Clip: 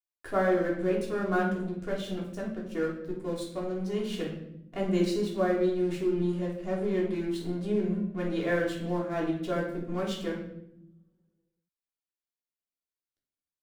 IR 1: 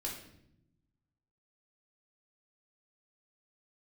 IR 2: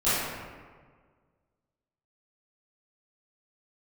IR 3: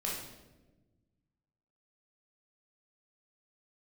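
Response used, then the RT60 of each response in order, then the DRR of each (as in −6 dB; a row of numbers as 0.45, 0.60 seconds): 1; 0.75, 1.6, 1.1 seconds; −3.5, −16.0, −4.5 decibels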